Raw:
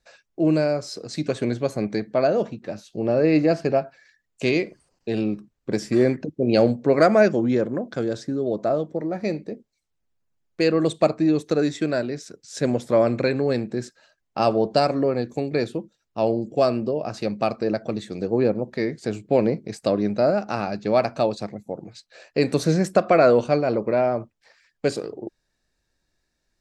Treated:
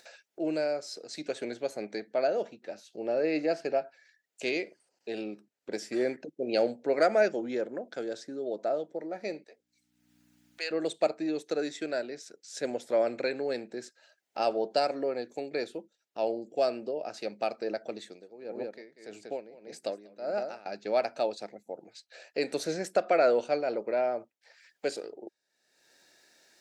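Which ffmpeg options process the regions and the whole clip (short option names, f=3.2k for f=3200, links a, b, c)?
-filter_complex "[0:a]asettb=1/sr,asplit=3[a][b][c];[a]atrim=end=9.444[d];[b]atrim=start=9.44:end=10.71,asetpts=PTS-STARTPTS,afade=t=in:d=0.004:c=qsin,afade=t=out:st=1.266:d=0.004:c=qsin,highpass=1k,aeval=exprs='val(0)+0.000562*(sin(2*PI*60*n/s)+sin(2*PI*2*60*n/s)/2+sin(2*PI*3*60*n/s)/3+sin(2*PI*4*60*n/s)/4+sin(2*PI*5*60*n/s)/5)':c=same[e];[c]atrim=start=10.706[f];[d][e]acrossfade=d=0.004:c1=hsin:c2=qsin[g];[g][f]acrossfade=d=0.004:c1=qsin:c2=hsin,asettb=1/sr,asplit=3[h][i][j];[h]atrim=end=18.044[k];[i]atrim=start=18.04:end=20.66,asetpts=PTS-STARTPTS,afade=t=in:d=0.004:c=qsin,afade=t=out:st=2.616:d=0.004:c=qsin,aecho=1:1:190:0.376,atrim=end_sample=115542,aeval=exprs='val(0)*pow(10,-20*(0.5-0.5*cos(2*PI*1.7*n/s))/20)':c=same[l];[j]atrim=start=20.656[m];[k][l]acrossfade=d=0.004:c1=hsin:c2=qsin[n];[n][m]acrossfade=d=0.004:c1=qsin:c2=hsin,highpass=420,equalizer=f=1.1k:t=o:w=0.22:g=-13.5,acompressor=mode=upward:threshold=-38dB:ratio=2.5,volume=-6dB"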